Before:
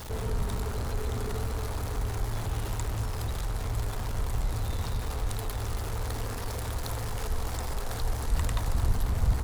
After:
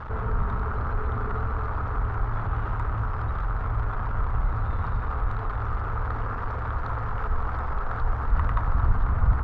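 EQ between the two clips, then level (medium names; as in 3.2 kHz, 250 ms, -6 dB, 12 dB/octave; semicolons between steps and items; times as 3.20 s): resonant low-pass 1.3 kHz, resonance Q 3.7; distance through air 56 m; peaking EQ 430 Hz -5.5 dB 2.7 oct; +4.5 dB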